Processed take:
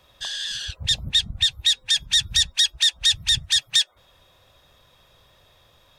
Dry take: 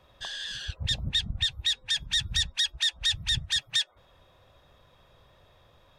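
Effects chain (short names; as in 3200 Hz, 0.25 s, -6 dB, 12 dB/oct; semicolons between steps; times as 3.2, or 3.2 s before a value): high shelf 2800 Hz +12 dB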